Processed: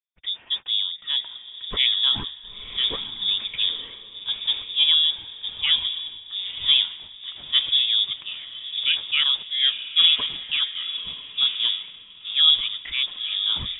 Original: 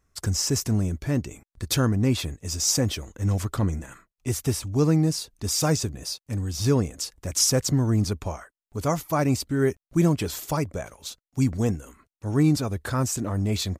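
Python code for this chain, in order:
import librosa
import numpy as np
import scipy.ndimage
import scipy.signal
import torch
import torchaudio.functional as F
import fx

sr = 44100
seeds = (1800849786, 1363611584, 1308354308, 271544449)

y = scipy.signal.sosfilt(scipy.signal.butter(2, 96.0, 'highpass', fs=sr, output='sos'), x)
y = fx.peak_eq(y, sr, hz=870.0, db=2.0, octaves=0.77)
y = fx.echo_diffused(y, sr, ms=967, feedback_pct=45, wet_db=-6.5)
y = fx.freq_invert(y, sr, carrier_hz=3600)
y = fx.band_widen(y, sr, depth_pct=70)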